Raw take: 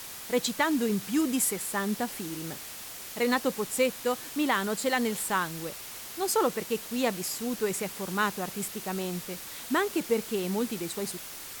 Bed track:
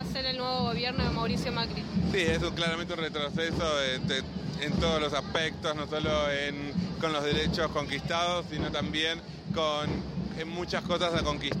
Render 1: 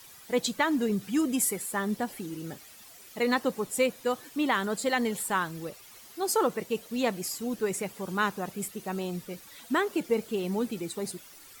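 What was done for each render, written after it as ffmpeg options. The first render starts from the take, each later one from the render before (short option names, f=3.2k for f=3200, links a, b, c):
-af "afftdn=nr=12:nf=-42"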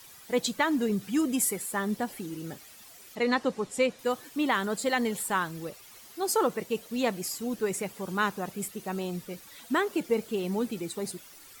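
-filter_complex "[0:a]asettb=1/sr,asplit=3[a][b][c];[a]atrim=end=3.154[d];[b]atrim=start=3.15:end=3.99,asetpts=PTS-STARTPTS,afade=t=in:d=0.004:c=qsin,afade=t=out:st=0.836:d=0.004:c=qsin,lowpass=7k[e];[c]atrim=start=3.986[f];[d][e]acrossfade=d=0.004:c1=hsin:c2=qsin[g];[g][f]acrossfade=d=0.004:c1=qsin:c2=hsin"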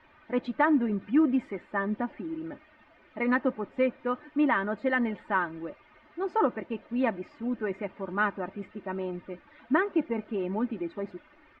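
-af "lowpass=f=2.2k:w=0.5412,lowpass=f=2.2k:w=1.3066,aecho=1:1:3.3:0.6"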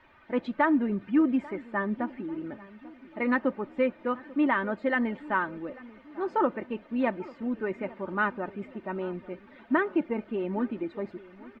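-filter_complex "[0:a]asplit=2[a][b];[b]adelay=841,lowpass=f=1.4k:p=1,volume=-19.5dB,asplit=2[c][d];[d]adelay=841,lowpass=f=1.4k:p=1,volume=0.51,asplit=2[e][f];[f]adelay=841,lowpass=f=1.4k:p=1,volume=0.51,asplit=2[g][h];[h]adelay=841,lowpass=f=1.4k:p=1,volume=0.51[i];[a][c][e][g][i]amix=inputs=5:normalize=0"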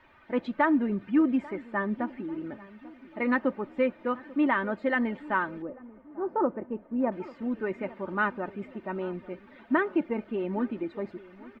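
-filter_complex "[0:a]asettb=1/sr,asplit=3[a][b][c];[a]atrim=end=5.624[d];[b]atrim=start=5.62:end=7.12,asetpts=PTS-STARTPTS,afade=t=in:d=0.004:c=qsin,afade=t=out:st=1.496:d=0.004:c=qsin,lowpass=1k[e];[c]atrim=start=7.116[f];[d][e]acrossfade=d=0.004:c1=hsin:c2=qsin[g];[g][f]acrossfade=d=0.004:c1=qsin:c2=hsin"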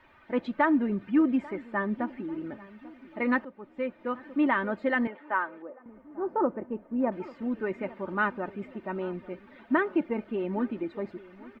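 -filter_complex "[0:a]asettb=1/sr,asplit=3[a][b][c];[a]atrim=end=5.074[d];[b]atrim=start=5.07:end=5.86,asetpts=PTS-STARTPTS,afade=t=in:d=0.004:c=qsin,afade=t=out:st=0.786:d=0.004:c=qsin,highpass=490,lowpass=2.2k[e];[c]atrim=start=5.856[f];[d][e]acrossfade=d=0.004:c1=hsin:c2=qsin[g];[g][f]acrossfade=d=0.004:c1=qsin:c2=hsin,asplit=2[h][i];[h]atrim=end=3.45,asetpts=PTS-STARTPTS,afade=t=out:st=3.446:d=0.004:c=hsin:silence=0.125893[j];[i]atrim=start=3.45,asetpts=PTS-STARTPTS,afade=t=in:d=0.9:silence=0.125893[k];[j][k]concat=n=2:v=0:a=1"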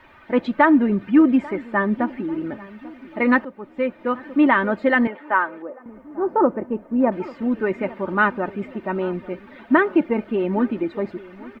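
-af "volume=9dB"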